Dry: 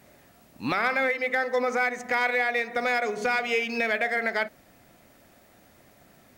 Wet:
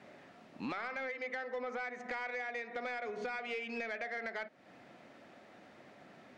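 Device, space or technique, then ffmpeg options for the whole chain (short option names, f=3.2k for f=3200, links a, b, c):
AM radio: -af "highpass=180,lowpass=3.5k,acompressor=threshold=-39dB:ratio=4,asoftclip=type=tanh:threshold=-31dB,volume=1dB"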